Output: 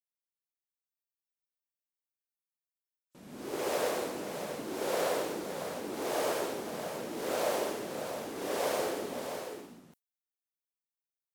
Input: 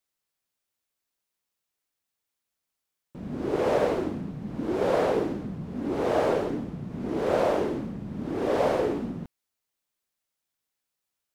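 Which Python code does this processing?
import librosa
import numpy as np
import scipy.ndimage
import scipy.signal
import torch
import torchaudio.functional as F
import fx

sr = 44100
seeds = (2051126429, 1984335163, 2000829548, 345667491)

y = fx.riaa(x, sr, side='recording')
y = fx.noise_reduce_blind(y, sr, reduce_db=29)
y = fx.high_shelf(y, sr, hz=5400.0, db=4.5)
y = fx.echo_multitap(y, sr, ms=(128, 195, 518, 678), db=(-3.5, -8.5, -12.5, -6.5))
y = F.gain(torch.from_numpy(y), -7.5).numpy()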